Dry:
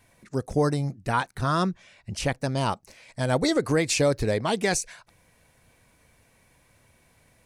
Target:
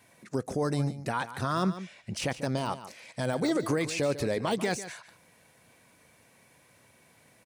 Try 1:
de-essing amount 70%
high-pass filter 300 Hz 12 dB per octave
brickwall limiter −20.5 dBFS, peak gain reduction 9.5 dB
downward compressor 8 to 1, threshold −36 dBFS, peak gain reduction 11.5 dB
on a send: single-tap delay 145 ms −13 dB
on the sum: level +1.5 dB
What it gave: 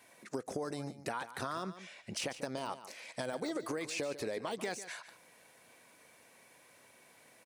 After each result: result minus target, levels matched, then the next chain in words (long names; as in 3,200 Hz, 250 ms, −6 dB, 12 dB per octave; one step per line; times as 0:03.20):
downward compressor: peak gain reduction +11.5 dB; 125 Hz band −7.0 dB
de-essing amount 70%
high-pass filter 300 Hz 12 dB per octave
brickwall limiter −20.5 dBFS, peak gain reduction 9.5 dB
on a send: single-tap delay 145 ms −13 dB
on the sum: level +1.5 dB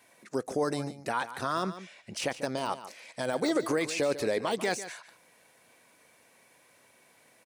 125 Hz band −8.5 dB
de-essing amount 70%
high-pass filter 140 Hz 12 dB per octave
brickwall limiter −20.5 dBFS, peak gain reduction 10 dB
on a send: single-tap delay 145 ms −13 dB
on the sum: level +1.5 dB